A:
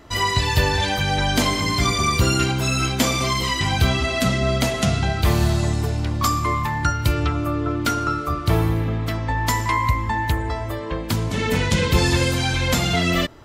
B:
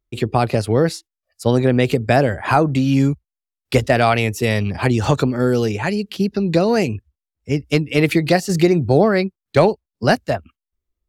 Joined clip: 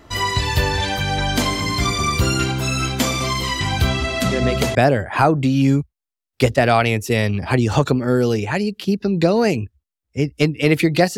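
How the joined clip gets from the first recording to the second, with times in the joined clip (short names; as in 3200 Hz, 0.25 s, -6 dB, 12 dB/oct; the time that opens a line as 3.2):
A
4.31 add B from 1.63 s 0.44 s -6 dB
4.75 switch to B from 2.07 s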